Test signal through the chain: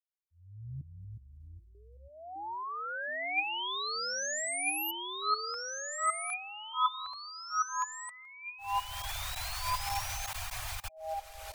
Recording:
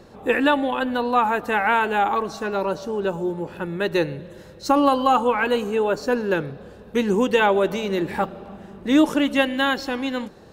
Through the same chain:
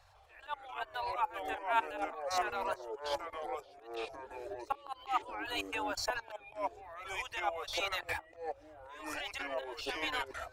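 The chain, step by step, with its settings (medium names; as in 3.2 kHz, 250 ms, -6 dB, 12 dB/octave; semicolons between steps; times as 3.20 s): reverb removal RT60 0.54 s; elliptic band-stop 100–720 Hz, stop band 50 dB; level held to a coarse grid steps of 21 dB; slow attack 530 ms; ever faster or slower copies 152 ms, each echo -4 st, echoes 3; small resonant body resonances 300/2400 Hz, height 9 dB; upward expansion 1.5:1, over -53 dBFS; trim +8.5 dB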